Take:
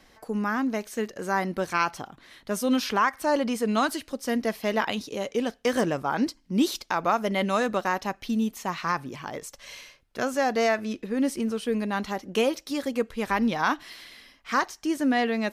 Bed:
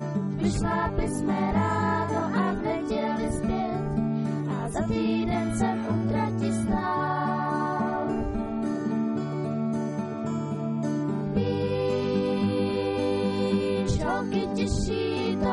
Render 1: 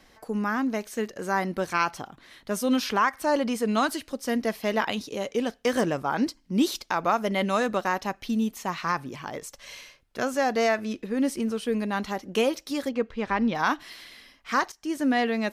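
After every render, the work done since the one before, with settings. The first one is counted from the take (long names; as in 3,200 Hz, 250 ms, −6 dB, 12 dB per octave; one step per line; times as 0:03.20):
0:12.89–0:13.55: high-frequency loss of the air 140 metres
0:14.72–0:15.14: fade in equal-power, from −13 dB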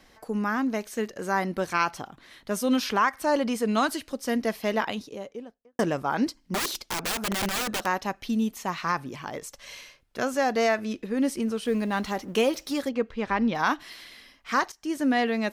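0:04.61–0:05.79: fade out and dull
0:06.54–0:07.86: wrap-around overflow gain 22.5 dB
0:11.65–0:12.81: mu-law and A-law mismatch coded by mu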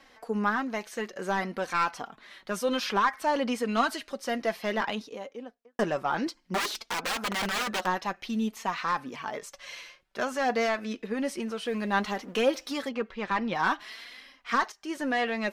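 mid-hump overdrive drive 12 dB, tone 3,100 Hz, clips at −11.5 dBFS
flanger 0.56 Hz, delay 3.6 ms, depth 2.4 ms, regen +42%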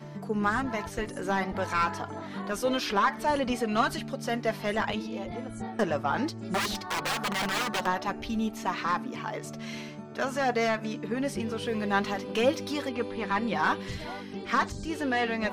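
mix in bed −12 dB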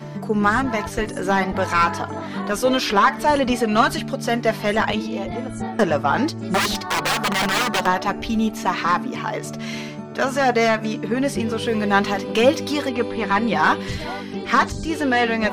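level +9 dB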